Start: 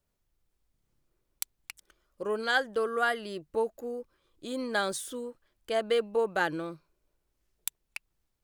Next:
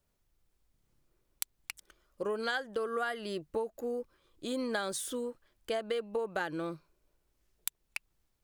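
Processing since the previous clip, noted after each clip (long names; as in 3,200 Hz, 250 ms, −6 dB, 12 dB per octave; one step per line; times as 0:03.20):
downward compressor 12 to 1, threshold −32 dBFS, peak gain reduction 12 dB
level +2 dB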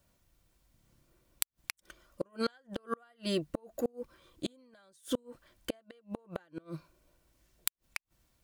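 notch comb filter 420 Hz
gate with flip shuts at −29 dBFS, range −35 dB
level +9 dB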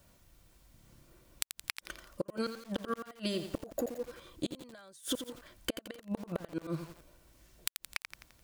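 downward compressor 20 to 1, threshold −39 dBFS, peak gain reduction 15.5 dB
feedback echo at a low word length 86 ms, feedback 55%, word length 9 bits, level −8 dB
level +8 dB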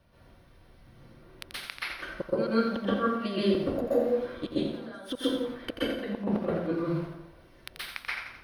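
moving average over 6 samples
dense smooth reverb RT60 0.75 s, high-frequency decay 0.6×, pre-delay 115 ms, DRR −9 dB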